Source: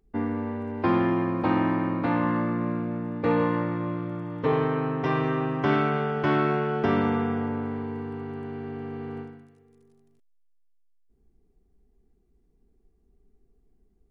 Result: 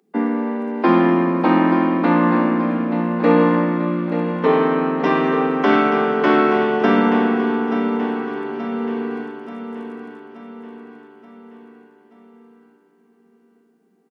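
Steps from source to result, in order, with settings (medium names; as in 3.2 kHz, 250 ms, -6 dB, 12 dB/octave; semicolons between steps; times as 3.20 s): steep high-pass 170 Hz 96 dB/octave; feedback delay 879 ms, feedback 52%, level -9.5 dB; trim +8.5 dB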